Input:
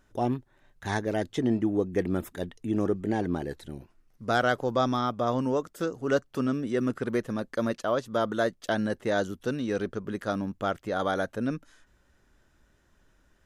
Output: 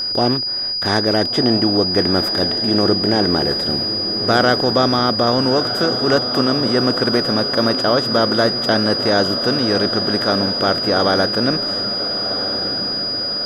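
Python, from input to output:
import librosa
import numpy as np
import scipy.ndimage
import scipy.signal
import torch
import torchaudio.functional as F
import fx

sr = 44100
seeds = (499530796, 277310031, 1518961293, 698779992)

y = fx.bin_compress(x, sr, power=0.6)
y = y + 10.0 ** (-26.0 / 20.0) * np.sin(2.0 * np.pi * 4900.0 * np.arange(len(y)) / sr)
y = fx.echo_diffused(y, sr, ms=1348, feedback_pct=57, wet_db=-10.0)
y = F.gain(torch.from_numpy(y), 6.5).numpy()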